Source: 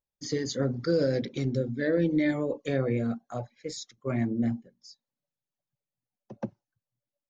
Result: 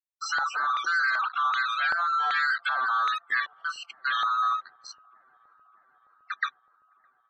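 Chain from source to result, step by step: split-band scrambler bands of 1 kHz; in parallel at -9.5 dB: fuzz box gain 44 dB, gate -49 dBFS; on the sum: peak limiter -15.5 dBFS, peak gain reduction 3.5 dB; loudest bins only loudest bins 64; LFO band-pass square 1.3 Hz 840–2200 Hz; peaking EQ 3.3 kHz +9 dB 1.6 oct; on a send: feedback echo behind a low-pass 612 ms, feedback 75%, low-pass 500 Hz, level -17.5 dB; on the sum: gate with hold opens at -59 dBFS

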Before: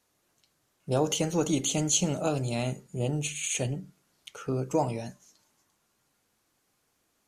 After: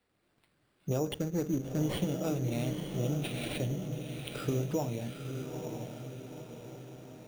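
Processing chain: 1.14–1.84 s: median filter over 41 samples; recorder AGC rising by 5.6 dB/s; peaking EQ 920 Hz -7.5 dB 1.1 oct; in parallel at +0.5 dB: compression, threshold -36 dBFS, peak gain reduction 14.5 dB; on the sum: treble shelf 4.1 kHz -10.5 dB; on a send: echo that smears into a reverb 908 ms, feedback 52%, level -6 dB; on the sum: sample-and-hold 7×; trim -6 dB

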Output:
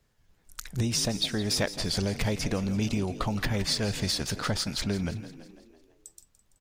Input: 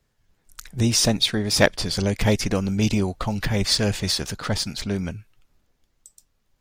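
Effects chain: compression 6:1, threshold -25 dBFS, peak gain reduction 14 dB; on a send: frequency-shifting echo 167 ms, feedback 55%, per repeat +40 Hz, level -14 dB

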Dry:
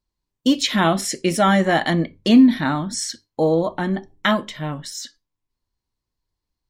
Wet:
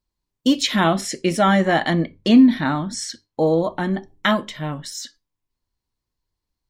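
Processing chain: 0.84–3.47 s: treble shelf 8.2 kHz -8 dB

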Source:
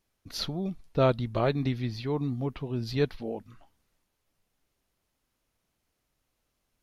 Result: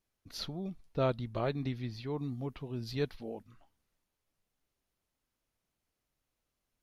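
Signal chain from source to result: 2.18–3.43 s: treble shelf 5.3 kHz +5 dB; trim -7 dB

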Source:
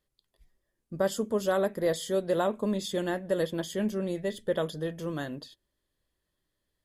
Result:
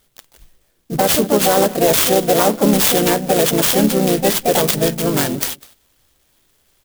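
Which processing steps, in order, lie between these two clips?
harmony voices -3 st -7 dB, +5 st -4 dB; high-order bell 4 kHz +14 dB 1.1 oct; on a send: delay 200 ms -24 dB; on the sum: loudness maximiser +17.5 dB; sampling jitter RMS 0.072 ms; trim -3.5 dB

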